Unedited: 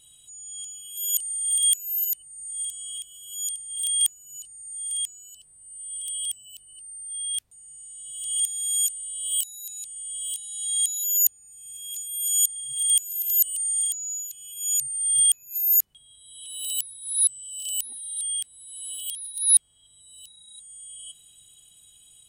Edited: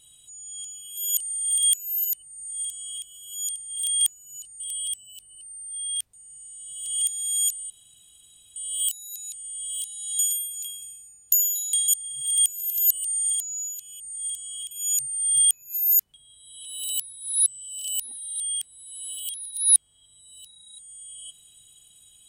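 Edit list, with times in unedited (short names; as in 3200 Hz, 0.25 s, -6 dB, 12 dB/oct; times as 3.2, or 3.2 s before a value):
2.35–3.06 copy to 14.52
4.6–5.98 cut
9.08 insert room tone 0.86 s
10.71–12.4 reverse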